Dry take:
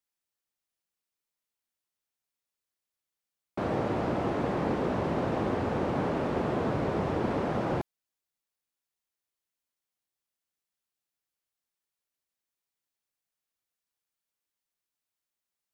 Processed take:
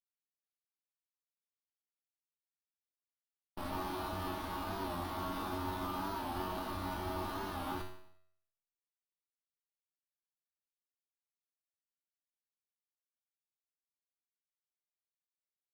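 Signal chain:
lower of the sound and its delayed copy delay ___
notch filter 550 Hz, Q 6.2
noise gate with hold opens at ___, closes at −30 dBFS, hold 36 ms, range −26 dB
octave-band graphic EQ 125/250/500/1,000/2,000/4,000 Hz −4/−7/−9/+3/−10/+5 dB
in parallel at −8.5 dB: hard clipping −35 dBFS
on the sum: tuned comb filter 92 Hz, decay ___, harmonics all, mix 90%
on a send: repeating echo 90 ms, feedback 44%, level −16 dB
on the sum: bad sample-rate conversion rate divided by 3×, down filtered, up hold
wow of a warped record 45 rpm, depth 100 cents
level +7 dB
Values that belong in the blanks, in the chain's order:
3.4 ms, −29 dBFS, 0.66 s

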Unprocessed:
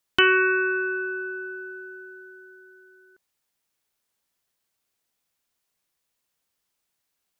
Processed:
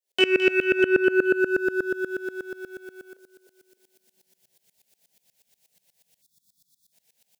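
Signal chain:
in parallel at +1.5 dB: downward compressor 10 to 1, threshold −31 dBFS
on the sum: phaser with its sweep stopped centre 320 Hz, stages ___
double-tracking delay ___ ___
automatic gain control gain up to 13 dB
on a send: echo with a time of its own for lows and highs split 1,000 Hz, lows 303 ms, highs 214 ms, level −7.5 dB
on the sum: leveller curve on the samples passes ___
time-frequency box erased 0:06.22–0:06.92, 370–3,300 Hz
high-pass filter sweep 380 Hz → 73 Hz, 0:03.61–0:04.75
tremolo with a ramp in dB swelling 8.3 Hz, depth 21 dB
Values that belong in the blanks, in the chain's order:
6, 21 ms, −8 dB, 1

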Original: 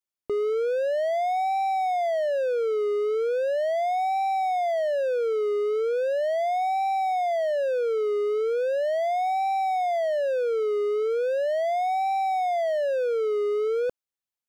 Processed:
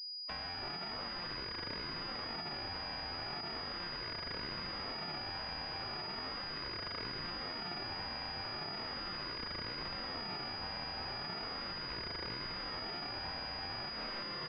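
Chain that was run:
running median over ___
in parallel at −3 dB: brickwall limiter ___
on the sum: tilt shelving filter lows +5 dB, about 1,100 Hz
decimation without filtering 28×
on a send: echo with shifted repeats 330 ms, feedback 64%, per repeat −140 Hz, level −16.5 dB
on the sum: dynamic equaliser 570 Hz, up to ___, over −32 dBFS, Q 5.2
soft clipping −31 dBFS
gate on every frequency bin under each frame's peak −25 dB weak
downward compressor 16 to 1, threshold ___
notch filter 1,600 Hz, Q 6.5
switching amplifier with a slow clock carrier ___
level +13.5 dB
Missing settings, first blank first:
25 samples, −31 dBFS, +3 dB, −49 dBFS, 4,900 Hz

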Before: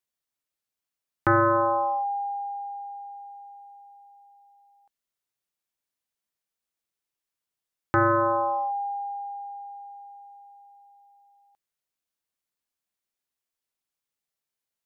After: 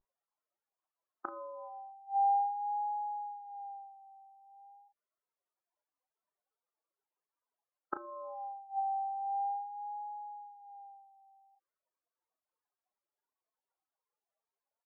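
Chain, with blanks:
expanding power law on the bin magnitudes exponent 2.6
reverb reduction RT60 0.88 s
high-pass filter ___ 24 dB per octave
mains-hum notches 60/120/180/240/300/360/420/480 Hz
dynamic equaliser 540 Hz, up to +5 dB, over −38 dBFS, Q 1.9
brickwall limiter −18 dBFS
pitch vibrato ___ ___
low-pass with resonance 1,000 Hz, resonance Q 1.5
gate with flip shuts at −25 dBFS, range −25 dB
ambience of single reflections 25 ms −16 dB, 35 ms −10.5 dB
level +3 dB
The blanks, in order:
350 Hz, 0.42 Hz, 52 cents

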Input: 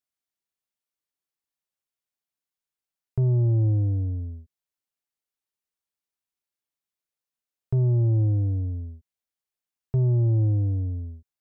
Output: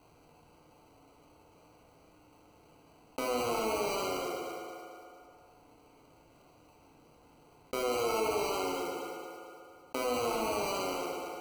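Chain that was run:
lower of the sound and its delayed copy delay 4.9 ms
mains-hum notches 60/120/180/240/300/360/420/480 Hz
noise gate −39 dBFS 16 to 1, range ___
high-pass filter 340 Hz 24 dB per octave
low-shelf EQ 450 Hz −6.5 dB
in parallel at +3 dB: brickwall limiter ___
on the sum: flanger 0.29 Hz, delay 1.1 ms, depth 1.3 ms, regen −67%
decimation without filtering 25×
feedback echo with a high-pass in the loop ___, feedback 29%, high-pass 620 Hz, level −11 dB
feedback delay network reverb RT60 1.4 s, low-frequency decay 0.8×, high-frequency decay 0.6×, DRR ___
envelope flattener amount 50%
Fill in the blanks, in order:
−8 dB, −36.5 dBFS, 226 ms, −2 dB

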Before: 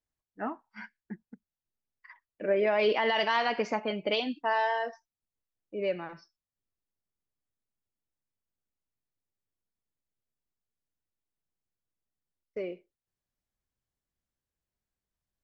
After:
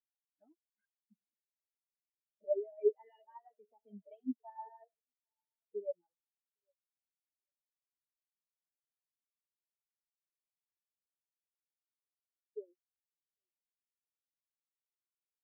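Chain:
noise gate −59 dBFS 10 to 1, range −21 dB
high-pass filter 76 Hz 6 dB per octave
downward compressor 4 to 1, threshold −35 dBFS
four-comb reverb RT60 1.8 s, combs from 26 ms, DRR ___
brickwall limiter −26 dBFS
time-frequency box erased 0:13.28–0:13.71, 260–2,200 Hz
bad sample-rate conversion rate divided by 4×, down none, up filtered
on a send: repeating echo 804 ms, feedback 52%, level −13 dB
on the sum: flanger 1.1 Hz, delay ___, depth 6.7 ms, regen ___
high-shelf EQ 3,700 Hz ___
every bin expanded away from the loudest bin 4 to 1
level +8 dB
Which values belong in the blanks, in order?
17.5 dB, 0.3 ms, +48%, +2.5 dB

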